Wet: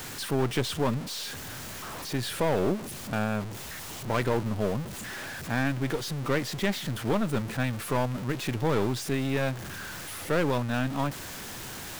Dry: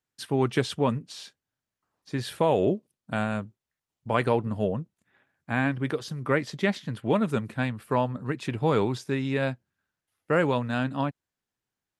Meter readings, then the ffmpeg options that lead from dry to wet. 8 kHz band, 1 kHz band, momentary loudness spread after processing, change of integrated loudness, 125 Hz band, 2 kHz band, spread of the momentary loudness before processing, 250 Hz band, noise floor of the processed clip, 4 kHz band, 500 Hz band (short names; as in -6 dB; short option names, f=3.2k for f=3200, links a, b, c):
+9.5 dB, -2.5 dB, 10 LU, -2.5 dB, 0.0 dB, -1.0 dB, 10 LU, -1.5 dB, -40 dBFS, +4.0 dB, -2.5 dB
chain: -af "aeval=exprs='val(0)+0.5*0.0422*sgn(val(0))':c=same,aeval=exprs='(tanh(10*val(0)+0.75)-tanh(0.75))/10':c=same"